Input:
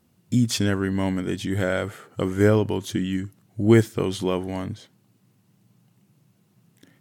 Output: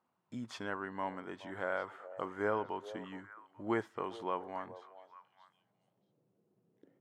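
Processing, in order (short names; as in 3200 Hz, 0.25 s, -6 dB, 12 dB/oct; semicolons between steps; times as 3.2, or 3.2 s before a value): delay with a stepping band-pass 0.421 s, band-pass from 580 Hz, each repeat 1.4 oct, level -11 dB; band-pass sweep 1000 Hz -> 440 Hz, 5.31–6.32; gain -2 dB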